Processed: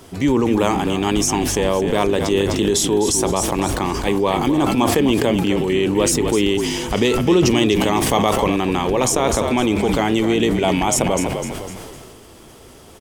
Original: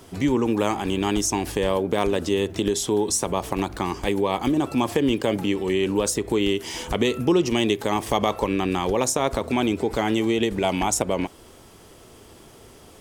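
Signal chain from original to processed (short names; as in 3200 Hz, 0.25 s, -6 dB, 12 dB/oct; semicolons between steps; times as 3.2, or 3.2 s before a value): frequency-shifting echo 0.253 s, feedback 34%, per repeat -43 Hz, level -9 dB; sustainer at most 24 dB/s; gain +3.5 dB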